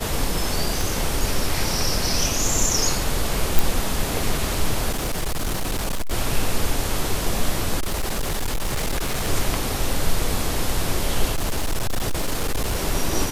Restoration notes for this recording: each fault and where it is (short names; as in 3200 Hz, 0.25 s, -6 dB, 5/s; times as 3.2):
0.81 pop
3.59 pop
4.91–6.13 clipped -20 dBFS
7.79–9.28 clipped -19.5 dBFS
11.34–12.77 clipped -18 dBFS